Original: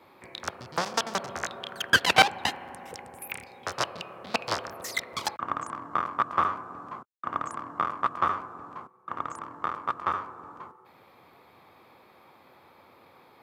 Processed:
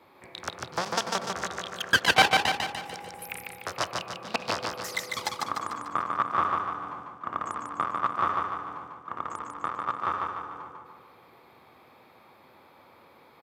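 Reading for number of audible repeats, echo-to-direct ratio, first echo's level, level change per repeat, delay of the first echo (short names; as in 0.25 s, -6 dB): 6, -2.0 dB, -3.5 dB, -6.0 dB, 0.148 s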